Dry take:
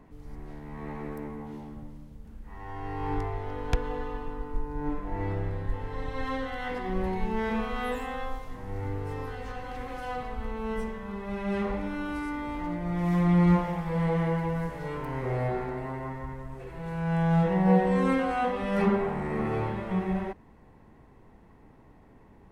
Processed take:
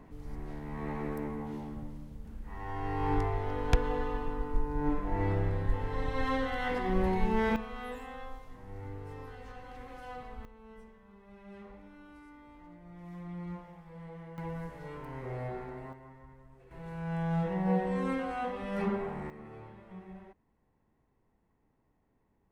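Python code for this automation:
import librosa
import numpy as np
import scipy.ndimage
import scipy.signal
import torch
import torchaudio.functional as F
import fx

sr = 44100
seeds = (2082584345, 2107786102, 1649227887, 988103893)

y = fx.gain(x, sr, db=fx.steps((0.0, 1.0), (7.56, -9.5), (10.45, -20.0), (14.38, -9.0), (15.93, -16.5), (16.71, -7.5), (19.3, -19.0)))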